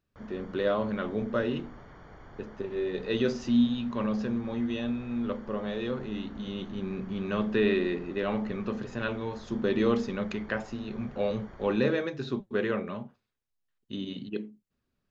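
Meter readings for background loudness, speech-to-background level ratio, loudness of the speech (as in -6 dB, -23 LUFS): -51.0 LUFS, 20.0 dB, -31.0 LUFS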